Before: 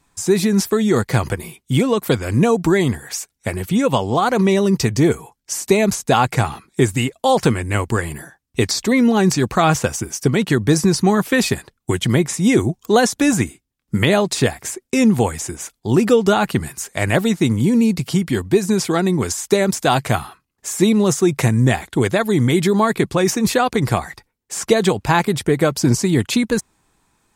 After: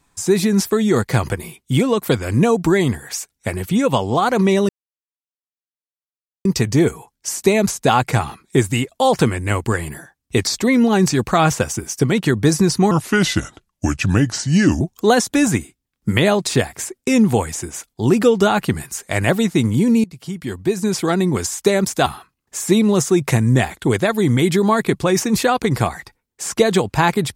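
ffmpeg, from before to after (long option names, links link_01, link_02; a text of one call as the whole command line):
ffmpeg -i in.wav -filter_complex "[0:a]asplit=6[link_01][link_02][link_03][link_04][link_05][link_06];[link_01]atrim=end=4.69,asetpts=PTS-STARTPTS,afade=type=out:start_time=4.686:duration=0.004:curve=hsin,apad=pad_dur=1.76[link_07];[link_02]atrim=start=4.69:end=11.154,asetpts=PTS-STARTPTS,afade=type=in:duration=0.004:curve=hsin[link_08];[link_03]atrim=start=11.15:end=12.67,asetpts=PTS-STARTPTS,asetrate=35280,aresample=44100[link_09];[link_04]atrim=start=12.666:end=17.9,asetpts=PTS-STARTPTS,afade=type=out:start_time=5.23:duration=0.004:curve=hsin:silence=0.0891251[link_10];[link_05]atrim=start=17.9:end=19.922,asetpts=PTS-STARTPTS,afade=type=in:duration=1.07:silence=0.0891251[link_11];[link_06]atrim=start=20.168[link_12];[link_07][link_08]concat=n=2:v=0:a=1[link_13];[link_13][link_09]acrossfade=duration=0.004:curve1=hsin:curve2=hsin[link_14];[link_10][link_11]concat=n=2:v=0:a=1[link_15];[link_14][link_15]acrossfade=duration=0.004:curve1=hsin:curve2=hsin[link_16];[link_16][link_12]acrossfade=duration=0.004:curve1=hsin:curve2=hsin" out.wav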